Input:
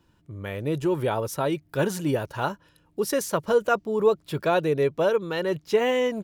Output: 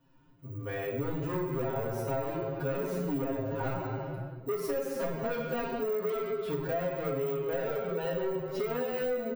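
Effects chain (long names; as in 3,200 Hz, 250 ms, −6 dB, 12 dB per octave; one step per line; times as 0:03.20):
one scale factor per block 7 bits
dynamic equaliser 420 Hz, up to +7 dB, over −35 dBFS, Q 1
hard clipping −21 dBFS, distortion −6 dB
bad sample-rate conversion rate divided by 2×, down none, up zero stuff
high-shelf EQ 3,400 Hz −11.5 dB
mains-hum notches 50/100/150/200/250 Hz
comb filter 7.5 ms, depth 75%
rectangular room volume 490 cubic metres, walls mixed, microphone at 1.8 metres
pitch vibrato 6 Hz 11 cents
phase-vocoder stretch with locked phases 1.5×
downward compressor, threshold −24 dBFS, peak gain reduction 13 dB
level −5.5 dB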